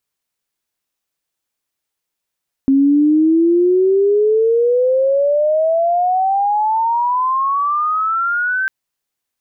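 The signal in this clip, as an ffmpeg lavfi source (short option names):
-f lavfi -i "aevalsrc='pow(10,(-8.5-6.5*t/6)/20)*sin(2*PI*268*6/(30.5*log(2)/12)*(exp(30.5*log(2)/12*t/6)-1))':d=6:s=44100"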